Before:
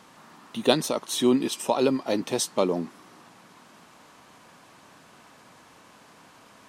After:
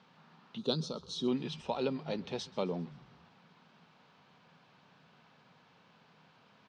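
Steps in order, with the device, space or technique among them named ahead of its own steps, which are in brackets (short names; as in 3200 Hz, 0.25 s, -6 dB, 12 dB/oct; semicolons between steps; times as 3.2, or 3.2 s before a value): frequency-shifting delay pedal into a guitar cabinet (frequency-shifting echo 0.131 s, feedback 58%, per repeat -110 Hz, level -21.5 dB; speaker cabinet 90–4500 Hz, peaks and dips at 160 Hz +8 dB, 310 Hz -10 dB, 630 Hz -4 dB, 1100 Hz -5 dB, 1900 Hz -4 dB); 0.58–1.28 EQ curve 450 Hz 0 dB, 760 Hz -9 dB, 1300 Hz -2 dB, 2000 Hz -22 dB, 4300 Hz +5 dB; gain -8.5 dB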